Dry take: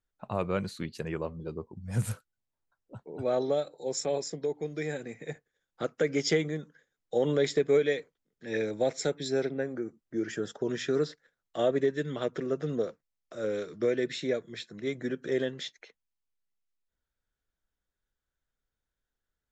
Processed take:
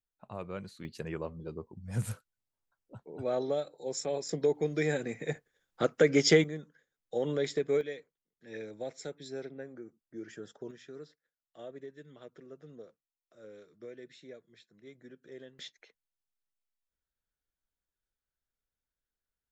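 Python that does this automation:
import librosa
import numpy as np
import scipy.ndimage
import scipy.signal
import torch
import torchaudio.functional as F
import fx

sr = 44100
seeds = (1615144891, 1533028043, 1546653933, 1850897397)

y = fx.gain(x, sr, db=fx.steps((0.0, -10.0), (0.85, -3.5), (4.29, 4.0), (6.44, -5.0), (7.81, -11.5), (10.71, -19.0), (15.59, -7.0)))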